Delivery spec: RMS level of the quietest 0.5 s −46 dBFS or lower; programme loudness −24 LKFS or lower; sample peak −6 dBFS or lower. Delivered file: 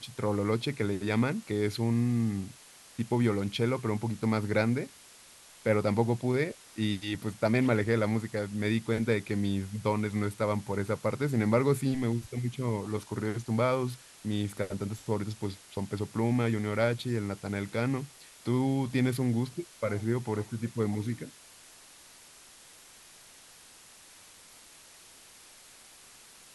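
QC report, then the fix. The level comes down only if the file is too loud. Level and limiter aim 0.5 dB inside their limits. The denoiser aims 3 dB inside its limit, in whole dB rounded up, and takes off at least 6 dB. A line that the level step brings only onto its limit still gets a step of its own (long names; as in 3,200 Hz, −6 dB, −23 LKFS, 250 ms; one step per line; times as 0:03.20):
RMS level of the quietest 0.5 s −54 dBFS: in spec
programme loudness −30.5 LKFS: in spec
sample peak −11.5 dBFS: in spec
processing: no processing needed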